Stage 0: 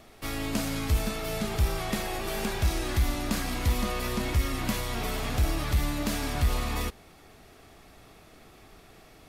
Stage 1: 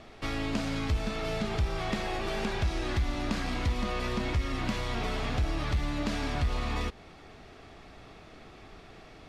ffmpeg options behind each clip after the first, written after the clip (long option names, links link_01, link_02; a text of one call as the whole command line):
ffmpeg -i in.wav -af "acompressor=threshold=-33dB:ratio=2,lowpass=4800,volume=3dB" out.wav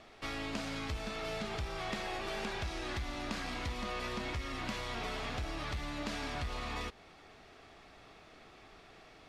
ffmpeg -i in.wav -af "lowshelf=frequency=350:gain=-8,volume=-3.5dB" out.wav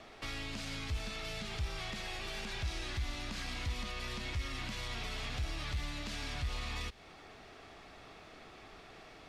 ffmpeg -i in.wav -filter_complex "[0:a]acrossover=split=150|2000[link_01][link_02][link_03];[link_02]acompressor=threshold=-51dB:ratio=4[link_04];[link_03]alimiter=level_in=14dB:limit=-24dB:level=0:latency=1:release=50,volume=-14dB[link_05];[link_01][link_04][link_05]amix=inputs=3:normalize=0,volume=3dB" out.wav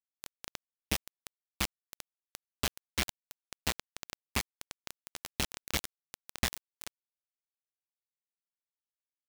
ffmpeg -i in.wav -af "acrusher=bits=4:mix=0:aa=0.000001,volume=5.5dB" out.wav